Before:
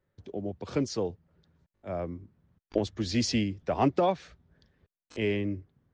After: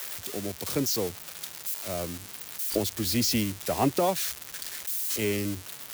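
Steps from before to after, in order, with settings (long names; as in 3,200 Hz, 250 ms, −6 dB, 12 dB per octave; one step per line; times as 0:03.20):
spike at every zero crossing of −21.5 dBFS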